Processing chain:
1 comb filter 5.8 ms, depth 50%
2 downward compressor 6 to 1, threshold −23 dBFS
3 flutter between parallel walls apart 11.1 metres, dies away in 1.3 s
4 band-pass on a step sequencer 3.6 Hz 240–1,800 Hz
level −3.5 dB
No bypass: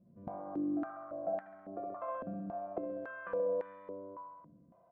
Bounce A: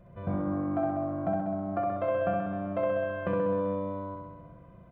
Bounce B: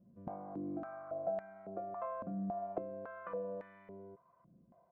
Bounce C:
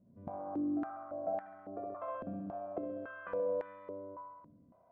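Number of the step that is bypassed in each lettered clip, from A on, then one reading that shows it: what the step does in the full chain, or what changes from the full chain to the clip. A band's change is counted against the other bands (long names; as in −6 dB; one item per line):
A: 4, 125 Hz band +9.0 dB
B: 3, change in crest factor +2.5 dB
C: 1, 2 kHz band −1.5 dB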